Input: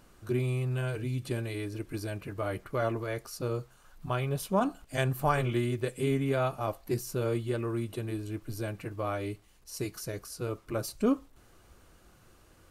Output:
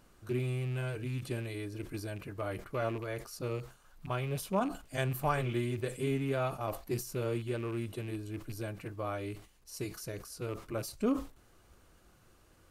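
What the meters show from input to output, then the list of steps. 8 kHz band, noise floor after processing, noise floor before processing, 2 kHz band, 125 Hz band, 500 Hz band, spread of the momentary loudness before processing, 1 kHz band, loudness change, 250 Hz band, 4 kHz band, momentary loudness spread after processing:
−3.0 dB, −64 dBFS, −60 dBFS, −3.0 dB, −3.5 dB, −4.0 dB, 9 LU, −4.0 dB, −3.5 dB, −3.5 dB, −3.0 dB, 9 LU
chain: loose part that buzzes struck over −34 dBFS, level −36 dBFS
level that may fall only so fast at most 140 dB per second
level −4 dB

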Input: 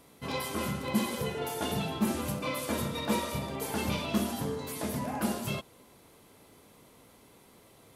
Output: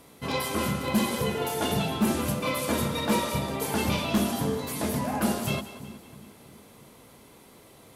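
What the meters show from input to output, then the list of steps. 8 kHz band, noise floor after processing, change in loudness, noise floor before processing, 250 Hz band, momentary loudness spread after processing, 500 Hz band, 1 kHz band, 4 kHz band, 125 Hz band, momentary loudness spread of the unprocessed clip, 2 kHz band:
+5.0 dB, −53 dBFS, +5.0 dB, −58 dBFS, +5.0 dB, 5 LU, +5.0 dB, +5.5 dB, +5.0 dB, +5.0 dB, 4 LU, +5.5 dB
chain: echo with a time of its own for lows and highs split 360 Hz, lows 327 ms, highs 184 ms, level −14 dB
harmonic generator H 5 −8 dB, 7 −15 dB, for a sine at −14.5 dBFS

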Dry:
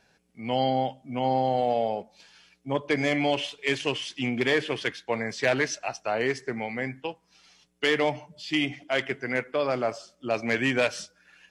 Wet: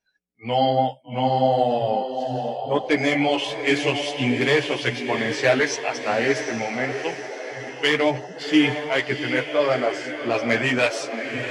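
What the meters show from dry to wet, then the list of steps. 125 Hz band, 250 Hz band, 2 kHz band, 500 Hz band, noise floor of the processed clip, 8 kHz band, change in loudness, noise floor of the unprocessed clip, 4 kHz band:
+6.0 dB, +6.0 dB, +5.5 dB, +5.5 dB, −42 dBFS, +5.0 dB, +5.0 dB, −67 dBFS, +5.5 dB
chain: feedback delay with all-pass diffusion 750 ms, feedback 46%, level −7 dB
multi-voice chorus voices 6, 0.99 Hz, delay 13 ms, depth 4 ms
noise reduction from a noise print of the clip's start 25 dB
level +7.5 dB

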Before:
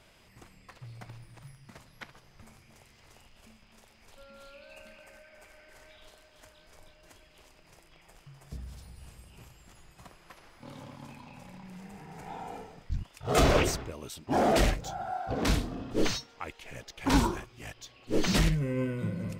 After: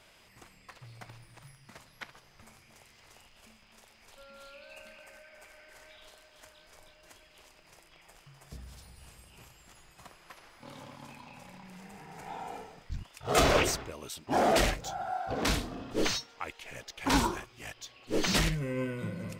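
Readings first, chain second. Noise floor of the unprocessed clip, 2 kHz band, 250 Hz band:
−60 dBFS, +1.5 dB, −3.5 dB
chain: low-shelf EQ 400 Hz −7.5 dB
level +2 dB

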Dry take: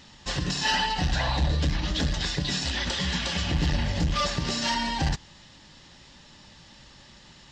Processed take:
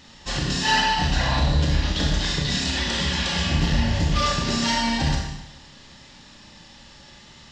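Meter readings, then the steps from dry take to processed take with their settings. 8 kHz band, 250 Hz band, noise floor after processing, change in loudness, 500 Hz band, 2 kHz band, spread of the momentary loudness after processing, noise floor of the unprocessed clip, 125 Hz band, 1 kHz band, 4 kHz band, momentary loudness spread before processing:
+4.0 dB, +5.0 dB, −48 dBFS, +4.5 dB, +4.0 dB, +4.5 dB, 5 LU, −52 dBFS, +4.5 dB, +5.0 dB, +4.0 dB, 4 LU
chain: four-comb reverb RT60 0.88 s, combs from 27 ms, DRR −0.5 dB
level +1 dB

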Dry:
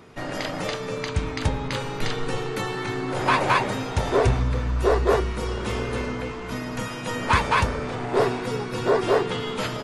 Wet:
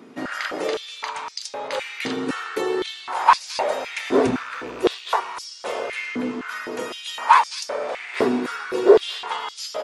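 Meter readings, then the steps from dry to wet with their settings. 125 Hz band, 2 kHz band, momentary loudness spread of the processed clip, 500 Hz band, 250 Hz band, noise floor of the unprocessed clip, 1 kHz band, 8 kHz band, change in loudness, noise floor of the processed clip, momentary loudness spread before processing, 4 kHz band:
−18.0 dB, 0.0 dB, 14 LU, +2.0 dB, +1.5 dB, −33 dBFS, +4.0 dB, +2.0 dB, +1.5 dB, −40 dBFS, 9 LU, +2.0 dB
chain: loose part that buzzes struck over −22 dBFS, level −30 dBFS
high-pass on a step sequencer 3.9 Hz 250–5,200 Hz
level −1 dB

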